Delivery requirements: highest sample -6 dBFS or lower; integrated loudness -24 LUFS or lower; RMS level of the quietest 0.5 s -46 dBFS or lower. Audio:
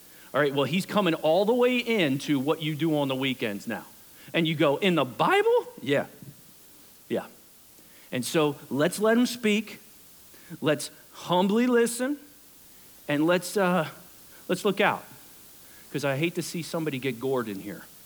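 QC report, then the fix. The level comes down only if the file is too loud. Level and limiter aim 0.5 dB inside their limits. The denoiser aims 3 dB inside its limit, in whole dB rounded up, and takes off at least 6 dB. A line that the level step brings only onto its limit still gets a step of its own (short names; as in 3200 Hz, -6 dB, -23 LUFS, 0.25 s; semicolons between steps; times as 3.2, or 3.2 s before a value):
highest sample -9.5 dBFS: OK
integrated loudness -26.0 LUFS: OK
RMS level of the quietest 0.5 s -53 dBFS: OK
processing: none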